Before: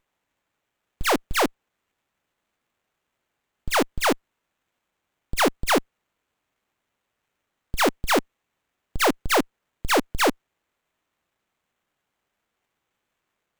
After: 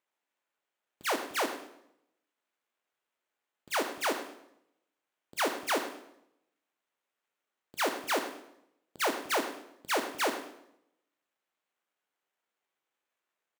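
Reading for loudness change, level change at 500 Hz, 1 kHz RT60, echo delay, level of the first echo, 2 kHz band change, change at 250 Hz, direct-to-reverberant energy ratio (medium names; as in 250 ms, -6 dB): -9.0 dB, -9.0 dB, 0.75 s, 106 ms, -13.5 dB, -8.0 dB, -12.5 dB, 6.0 dB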